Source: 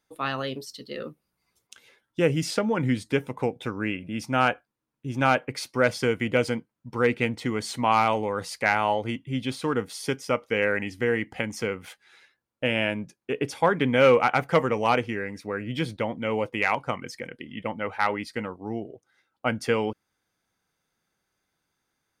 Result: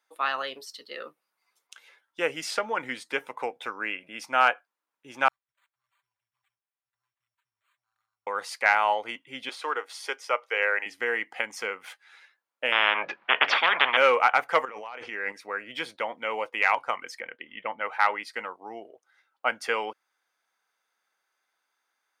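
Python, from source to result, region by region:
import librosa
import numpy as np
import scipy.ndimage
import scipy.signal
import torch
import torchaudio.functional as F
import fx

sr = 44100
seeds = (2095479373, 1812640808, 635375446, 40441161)

y = fx.chain(x, sr, fx.cheby2_bandstop(low_hz=220.0, high_hz=7300.0, order=4, stop_db=70),
    fx.resample_bad(factor=8, down='none', up='hold'),
    fx.comb(ms=5.1, depth=0.33), at=(5.28, 8.27))
y = fx.chain(y, sr, fx.highpass(hz=350.0, slope=24),
    fx.high_shelf(hz=8300.0, db=-7.0), at=(9.49, 10.86))
y = fx.chain(y, sr, fx.lowpass(hz=2800.0, slope=24),
    fx.peak_eq(hz=180.0, db=10.0, octaves=1.0),
    fx.spectral_comp(ratio=10.0), at=(12.72, 13.97))
y = fx.chain(y, sr, fx.lowpass(hz=6600.0, slope=12),
    fx.over_compress(threshold_db=-34.0, ratio=-1.0), at=(14.65, 15.32))
y = fx.chain(y, sr, fx.lowpass(hz=3400.0, slope=24),
    fx.low_shelf(hz=80.0, db=11.0), at=(17.21, 17.81))
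y = scipy.signal.sosfilt(scipy.signal.butter(2, 940.0, 'highpass', fs=sr, output='sos'), y)
y = fx.high_shelf(y, sr, hz=2300.0, db=-9.5)
y = y * librosa.db_to_amplitude(6.5)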